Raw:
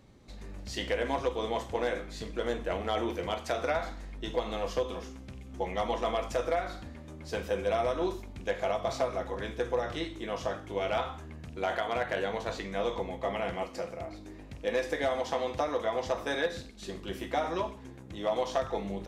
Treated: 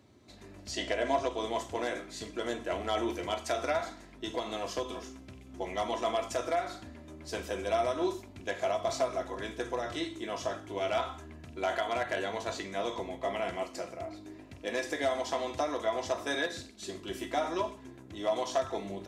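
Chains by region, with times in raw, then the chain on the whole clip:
0:00.71–0:01.38: low-pass filter 8,200 Hz + parametric band 640 Hz +10 dB 0.26 octaves
whole clip: high-pass filter 79 Hz 24 dB per octave; dynamic equaliser 7,700 Hz, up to +7 dB, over −59 dBFS, Q 0.84; comb filter 3 ms, depth 45%; level −2 dB

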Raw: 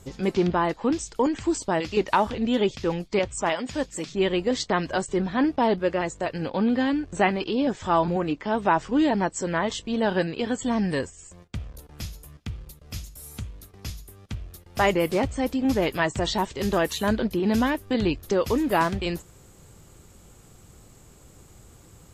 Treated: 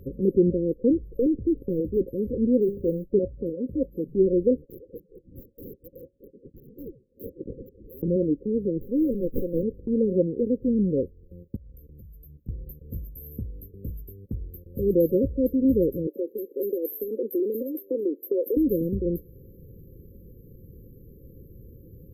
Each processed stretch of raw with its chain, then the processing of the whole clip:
0:00.95–0:02.03: low-shelf EQ 250 Hz +3.5 dB + gain into a clipping stage and back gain 21.5 dB
0:02.60–0:03.04: mains-hum notches 50/100/150/200/250/300/350/400/450 Hz + noise that follows the level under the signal 33 dB + saturating transformer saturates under 610 Hz
0:04.62–0:08.03: voice inversion scrambler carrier 3,400 Hz + gain into a clipping stage and back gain 15 dB
0:08.81–0:09.63: spectral tilt +3 dB per octave + windowed peak hold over 17 samples
0:11.56–0:12.49: parametric band 420 Hz −6 dB 2 octaves + downward compressor, threshold −47 dBFS
0:16.07–0:18.57: Butterworth high-pass 310 Hz + downward compressor 4 to 1, threshold −24 dBFS + parametric band 13,000 Hz +9 dB 0.38 octaves
whole clip: brick-wall band-stop 550–12,000 Hz; dynamic equaliser 110 Hz, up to −5 dB, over −40 dBFS, Q 0.72; level +4.5 dB

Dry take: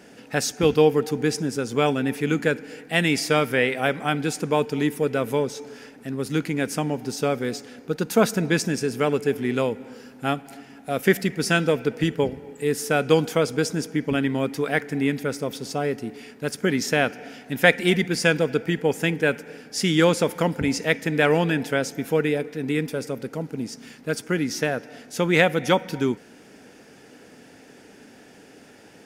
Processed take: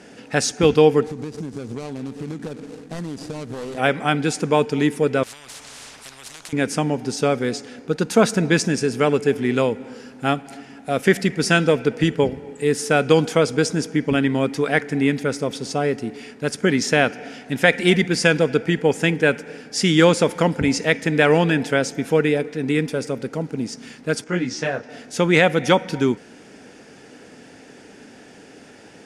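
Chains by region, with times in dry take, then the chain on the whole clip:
0:01.04–0:03.78: running median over 41 samples + bass and treble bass +3 dB, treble +9 dB + downward compressor 10 to 1, threshold −30 dBFS
0:05.23–0:06.53: downward compressor 12 to 1, threshold −27 dBFS + every bin compressed towards the loudest bin 10 to 1
0:24.24–0:24.89: low-pass filter 7,800 Hz 24 dB per octave + parametric band 920 Hz +3 dB 0.97 octaves + micro pitch shift up and down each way 33 cents
whole clip: low-pass filter 10,000 Hz 24 dB per octave; boost into a limiter +5 dB; level −1 dB

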